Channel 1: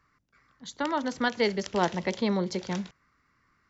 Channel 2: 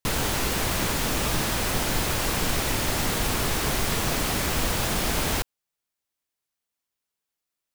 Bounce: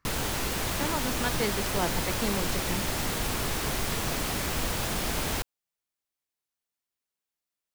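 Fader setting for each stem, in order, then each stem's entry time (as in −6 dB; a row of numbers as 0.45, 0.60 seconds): −4.5, −4.5 decibels; 0.00, 0.00 seconds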